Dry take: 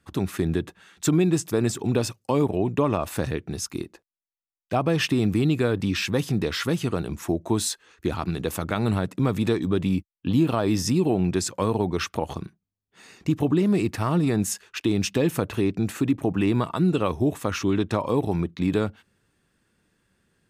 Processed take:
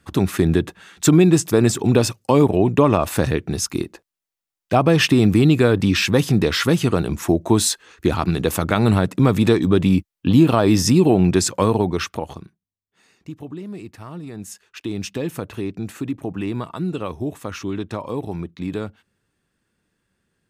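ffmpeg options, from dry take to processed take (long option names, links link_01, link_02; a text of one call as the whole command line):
ffmpeg -i in.wav -af "volume=16dB,afade=type=out:start_time=11.54:duration=0.89:silence=0.237137,afade=type=out:start_time=12.43:duration=0.94:silence=0.446684,afade=type=in:start_time=14.31:duration=0.68:silence=0.375837" out.wav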